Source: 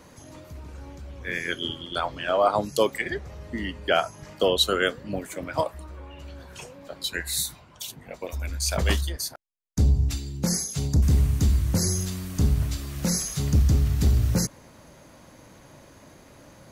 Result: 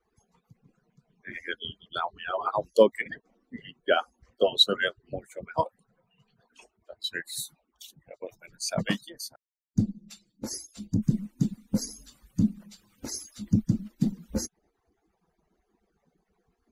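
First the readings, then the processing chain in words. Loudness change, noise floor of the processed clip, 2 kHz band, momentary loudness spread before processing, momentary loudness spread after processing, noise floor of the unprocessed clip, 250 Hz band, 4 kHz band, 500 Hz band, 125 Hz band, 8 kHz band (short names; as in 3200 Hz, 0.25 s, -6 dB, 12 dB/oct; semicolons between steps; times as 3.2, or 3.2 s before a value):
-3.5 dB, -78 dBFS, -3.5 dB, 20 LU, 21 LU, -51 dBFS, 0.0 dB, -1.0 dB, -1.5 dB, -9.5 dB, -9.0 dB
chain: median-filter separation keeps percussive; dynamic EQ 210 Hz, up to +6 dB, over -46 dBFS, Q 4.6; spectral expander 1.5:1; gain +2 dB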